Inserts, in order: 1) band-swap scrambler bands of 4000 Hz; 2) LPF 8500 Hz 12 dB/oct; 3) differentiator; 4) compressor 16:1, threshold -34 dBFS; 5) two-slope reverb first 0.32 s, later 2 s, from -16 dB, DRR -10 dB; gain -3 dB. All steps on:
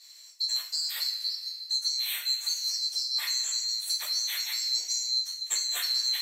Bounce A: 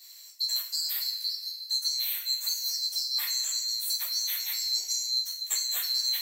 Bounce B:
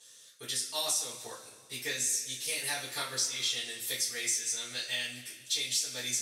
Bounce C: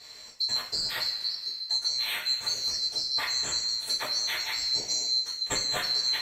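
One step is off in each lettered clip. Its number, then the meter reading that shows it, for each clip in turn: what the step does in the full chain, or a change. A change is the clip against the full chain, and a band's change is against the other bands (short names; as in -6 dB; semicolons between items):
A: 2, 8 kHz band +3.5 dB; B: 1, 4 kHz band -11.5 dB; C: 3, 1 kHz band +10.5 dB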